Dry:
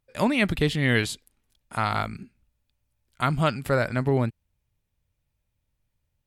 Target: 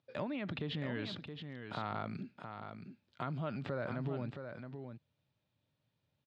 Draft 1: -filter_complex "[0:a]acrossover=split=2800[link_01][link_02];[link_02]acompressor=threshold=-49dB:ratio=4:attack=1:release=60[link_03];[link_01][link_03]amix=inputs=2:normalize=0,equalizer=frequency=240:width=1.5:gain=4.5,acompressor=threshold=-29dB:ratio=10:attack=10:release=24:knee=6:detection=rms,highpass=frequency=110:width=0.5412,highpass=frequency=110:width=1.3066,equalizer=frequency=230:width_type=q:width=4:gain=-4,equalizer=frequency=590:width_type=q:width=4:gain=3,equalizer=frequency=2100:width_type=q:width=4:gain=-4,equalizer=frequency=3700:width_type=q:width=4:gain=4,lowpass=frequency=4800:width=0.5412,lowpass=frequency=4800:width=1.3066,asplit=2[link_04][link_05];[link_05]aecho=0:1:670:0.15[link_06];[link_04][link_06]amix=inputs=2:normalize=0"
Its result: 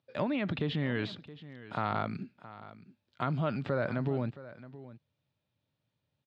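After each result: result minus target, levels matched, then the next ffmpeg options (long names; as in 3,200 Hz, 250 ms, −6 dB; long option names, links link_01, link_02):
downward compressor: peak gain reduction −7.5 dB; echo-to-direct −9 dB
-filter_complex "[0:a]acrossover=split=2800[link_01][link_02];[link_02]acompressor=threshold=-49dB:ratio=4:attack=1:release=60[link_03];[link_01][link_03]amix=inputs=2:normalize=0,equalizer=frequency=240:width=1.5:gain=4.5,acompressor=threshold=-37.5dB:ratio=10:attack=10:release=24:knee=6:detection=rms,highpass=frequency=110:width=0.5412,highpass=frequency=110:width=1.3066,equalizer=frequency=230:width_type=q:width=4:gain=-4,equalizer=frequency=590:width_type=q:width=4:gain=3,equalizer=frequency=2100:width_type=q:width=4:gain=-4,equalizer=frequency=3700:width_type=q:width=4:gain=4,lowpass=frequency=4800:width=0.5412,lowpass=frequency=4800:width=1.3066,asplit=2[link_04][link_05];[link_05]aecho=0:1:670:0.15[link_06];[link_04][link_06]amix=inputs=2:normalize=0"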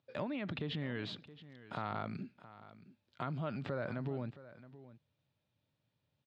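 echo-to-direct −9 dB
-filter_complex "[0:a]acrossover=split=2800[link_01][link_02];[link_02]acompressor=threshold=-49dB:ratio=4:attack=1:release=60[link_03];[link_01][link_03]amix=inputs=2:normalize=0,equalizer=frequency=240:width=1.5:gain=4.5,acompressor=threshold=-37.5dB:ratio=10:attack=10:release=24:knee=6:detection=rms,highpass=frequency=110:width=0.5412,highpass=frequency=110:width=1.3066,equalizer=frequency=230:width_type=q:width=4:gain=-4,equalizer=frequency=590:width_type=q:width=4:gain=3,equalizer=frequency=2100:width_type=q:width=4:gain=-4,equalizer=frequency=3700:width_type=q:width=4:gain=4,lowpass=frequency=4800:width=0.5412,lowpass=frequency=4800:width=1.3066,asplit=2[link_04][link_05];[link_05]aecho=0:1:670:0.422[link_06];[link_04][link_06]amix=inputs=2:normalize=0"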